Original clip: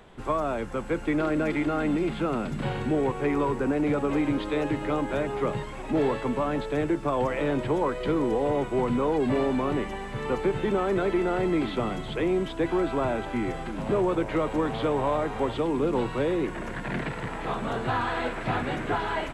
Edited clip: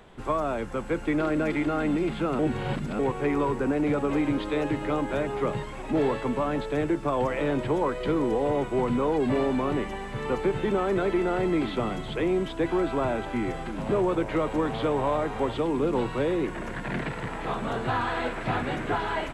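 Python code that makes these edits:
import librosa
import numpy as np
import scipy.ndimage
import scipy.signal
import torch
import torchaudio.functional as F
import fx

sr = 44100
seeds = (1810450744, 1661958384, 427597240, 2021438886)

y = fx.edit(x, sr, fx.reverse_span(start_s=2.39, length_s=0.6), tone=tone)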